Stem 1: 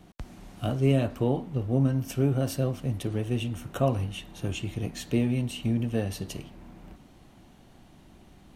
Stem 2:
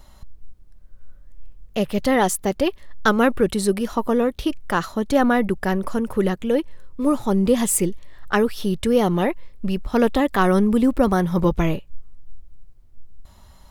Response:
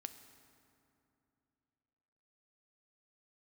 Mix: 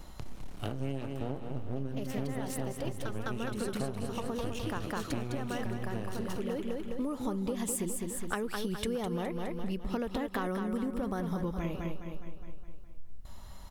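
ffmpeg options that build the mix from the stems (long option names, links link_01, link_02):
-filter_complex "[0:a]aeval=exprs='max(val(0),0)':channel_layout=same,volume=-2dB,asplit=4[link_01][link_02][link_03][link_04];[link_02]volume=-4.5dB[link_05];[link_03]volume=-7.5dB[link_06];[1:a]acompressor=threshold=-20dB:ratio=6,volume=-1dB,asplit=2[link_07][link_08];[link_08]volume=-7dB[link_09];[link_04]apad=whole_len=604468[link_10];[link_07][link_10]sidechaincompress=threshold=-39dB:ratio=8:attack=16:release=676[link_11];[2:a]atrim=start_sample=2205[link_12];[link_05][link_12]afir=irnorm=-1:irlink=0[link_13];[link_06][link_09]amix=inputs=2:normalize=0,aecho=0:1:207|414|621|828|1035|1242|1449:1|0.49|0.24|0.118|0.0576|0.0282|0.0138[link_14];[link_01][link_11][link_13][link_14]amix=inputs=4:normalize=0,acompressor=threshold=-31dB:ratio=5"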